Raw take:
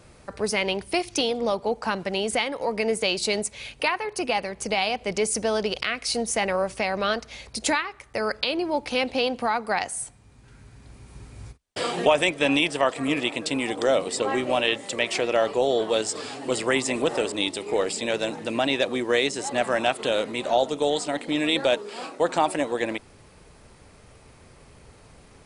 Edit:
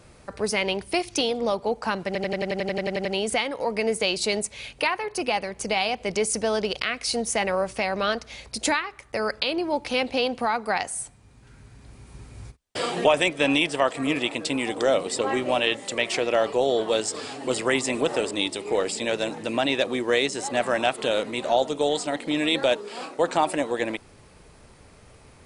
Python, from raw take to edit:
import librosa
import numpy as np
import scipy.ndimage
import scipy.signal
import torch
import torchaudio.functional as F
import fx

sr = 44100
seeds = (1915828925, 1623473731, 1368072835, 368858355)

y = fx.edit(x, sr, fx.stutter(start_s=2.06, slice_s=0.09, count=12), tone=tone)